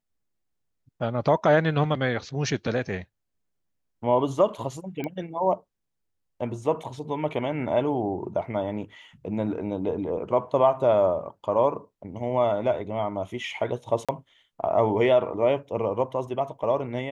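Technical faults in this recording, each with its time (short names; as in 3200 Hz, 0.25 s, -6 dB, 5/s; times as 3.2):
5.04 pop -19 dBFS
14.05–14.09 gap 36 ms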